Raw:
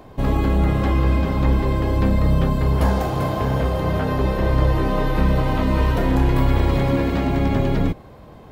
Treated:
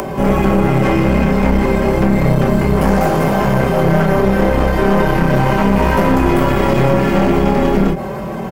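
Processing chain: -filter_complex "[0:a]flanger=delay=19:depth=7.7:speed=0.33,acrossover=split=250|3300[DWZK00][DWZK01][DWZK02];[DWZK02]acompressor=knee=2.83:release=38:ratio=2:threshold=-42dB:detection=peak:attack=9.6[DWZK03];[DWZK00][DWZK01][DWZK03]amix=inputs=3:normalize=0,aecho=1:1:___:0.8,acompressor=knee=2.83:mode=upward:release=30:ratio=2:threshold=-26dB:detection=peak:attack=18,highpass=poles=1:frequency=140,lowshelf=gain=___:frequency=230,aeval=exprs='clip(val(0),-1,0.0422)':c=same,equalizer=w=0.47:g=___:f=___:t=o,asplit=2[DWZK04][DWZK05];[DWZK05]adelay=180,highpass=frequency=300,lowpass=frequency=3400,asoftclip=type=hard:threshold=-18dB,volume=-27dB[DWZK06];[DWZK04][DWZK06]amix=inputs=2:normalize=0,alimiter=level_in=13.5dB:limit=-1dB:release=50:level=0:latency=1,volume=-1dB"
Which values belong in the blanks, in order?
5.2, 3, -9.5, 3800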